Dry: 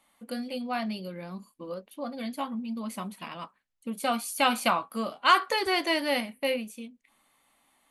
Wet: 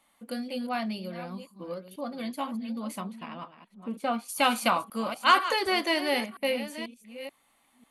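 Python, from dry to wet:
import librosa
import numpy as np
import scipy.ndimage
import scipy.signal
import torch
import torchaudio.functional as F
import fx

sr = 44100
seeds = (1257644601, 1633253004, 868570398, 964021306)

y = fx.reverse_delay(x, sr, ms=490, wet_db=-12)
y = fx.lowpass(y, sr, hz=fx.line((3.0, 2300.0), (4.28, 1400.0)), slope=6, at=(3.0, 4.28), fade=0.02)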